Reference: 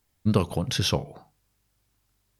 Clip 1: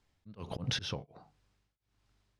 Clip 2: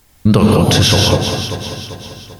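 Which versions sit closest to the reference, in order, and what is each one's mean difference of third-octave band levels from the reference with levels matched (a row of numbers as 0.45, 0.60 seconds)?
1, 2; 6.5, 9.5 decibels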